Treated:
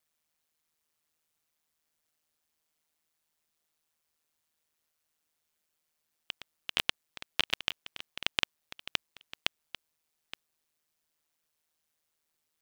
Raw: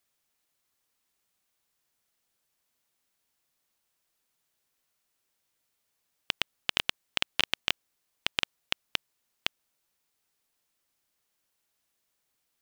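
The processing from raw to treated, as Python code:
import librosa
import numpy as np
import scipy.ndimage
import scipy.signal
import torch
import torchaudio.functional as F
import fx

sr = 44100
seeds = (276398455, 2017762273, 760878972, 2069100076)

y = fx.reverse_delay(x, sr, ms=550, wet_db=-13.0)
y = y * np.sin(2.0 * np.pi * 78.0 * np.arange(len(y)) / sr)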